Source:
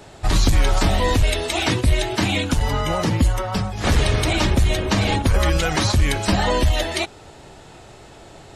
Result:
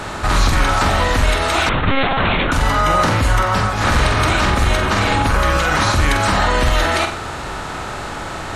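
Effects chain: per-bin compression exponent 0.6; bell 1300 Hz +11.5 dB 1 oct; limiter -6.5 dBFS, peak gain reduction 6 dB; flutter echo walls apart 8 m, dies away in 0.4 s; 1.69–2.52 monotone LPC vocoder at 8 kHz 270 Hz; gain -1 dB

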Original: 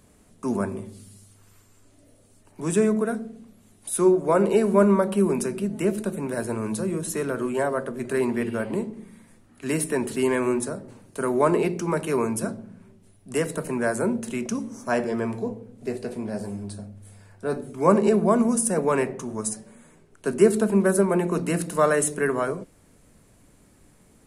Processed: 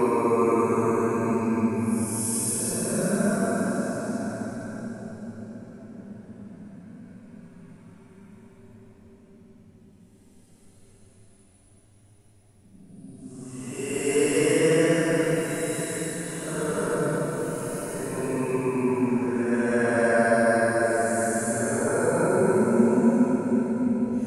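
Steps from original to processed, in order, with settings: spectral trails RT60 0.30 s; Paulstretch 12×, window 0.10 s, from 12.18; delay with a stepping band-pass 0.365 s, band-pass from 290 Hz, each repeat 1.4 oct, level -3.5 dB

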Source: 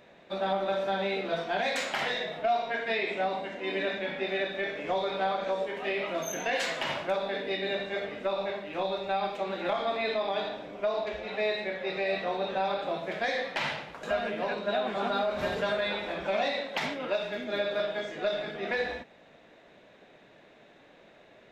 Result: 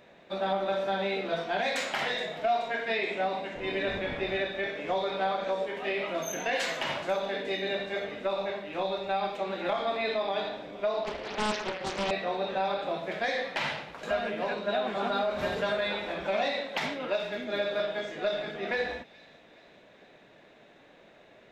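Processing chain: 3.54–4.67 wind noise 480 Hz -43 dBFS; thin delay 0.425 s, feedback 55%, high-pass 2900 Hz, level -17 dB; 11.04–12.11 Doppler distortion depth 0.82 ms

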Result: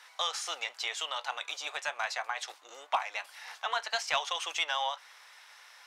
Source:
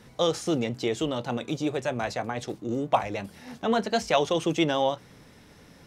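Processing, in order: HPF 860 Hz 24 dB/oct; in parallel at +2.5 dB: compressor, threshold -35 dBFS, peak gain reduction 13.5 dB; on the sum: overdrive pedal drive 9 dB, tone 5900 Hz, clips at -6.5 dBFS; gain -7.5 dB

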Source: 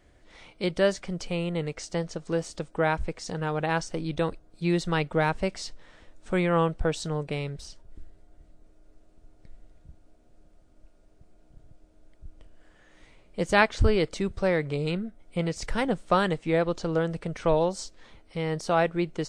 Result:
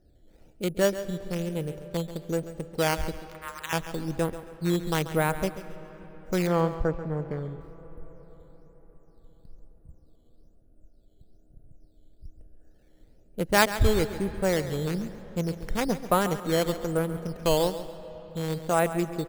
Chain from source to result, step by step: Wiener smoothing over 41 samples; 3.13–3.73 steep high-pass 950 Hz 72 dB/oct; decimation with a swept rate 8×, swing 100% 1.1 Hz; 6.47–7.61 polynomial smoothing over 41 samples; feedback echo 0.137 s, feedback 28%, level -13 dB; on a send at -16 dB: reverb RT60 5.1 s, pre-delay 0.115 s

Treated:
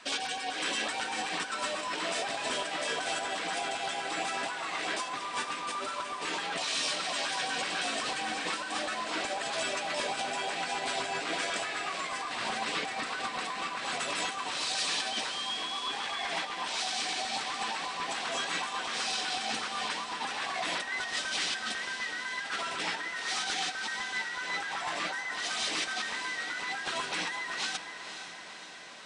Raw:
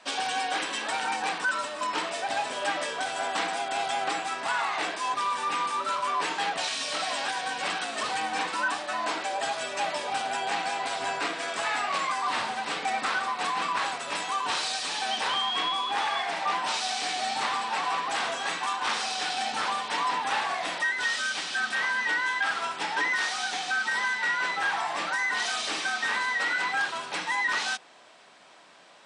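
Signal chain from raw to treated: notch 850 Hz, Q 12; negative-ratio compressor -33 dBFS, ratio -1; LFO notch saw up 8 Hz 510–1800 Hz; on a send: diffused feedback echo 0.505 s, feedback 62%, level -9.5 dB

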